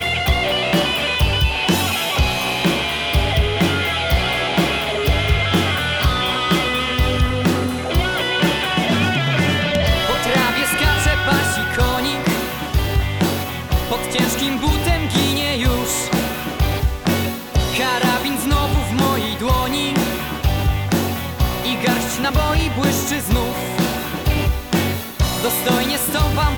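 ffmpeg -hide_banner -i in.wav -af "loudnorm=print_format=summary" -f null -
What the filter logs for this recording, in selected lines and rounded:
Input Integrated:    -18.3 LUFS
Input True Peak:      -5.5 dBTP
Input LRA:             2.3 LU
Input Threshold:     -28.3 LUFS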